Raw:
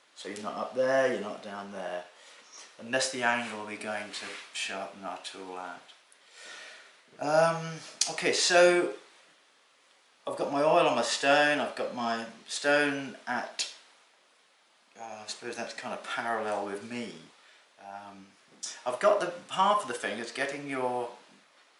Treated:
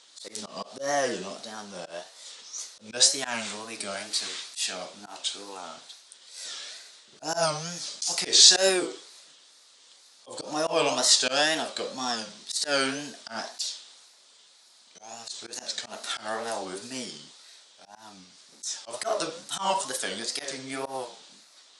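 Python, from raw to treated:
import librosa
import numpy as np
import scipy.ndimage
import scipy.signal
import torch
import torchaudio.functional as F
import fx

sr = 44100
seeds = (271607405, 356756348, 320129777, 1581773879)

y = fx.auto_swell(x, sr, attack_ms=107.0)
y = fx.band_shelf(y, sr, hz=5800.0, db=14.0, octaves=1.7)
y = fx.wow_flutter(y, sr, seeds[0], rate_hz=2.1, depth_cents=140.0)
y = y * librosa.db_to_amplitude(-1.0)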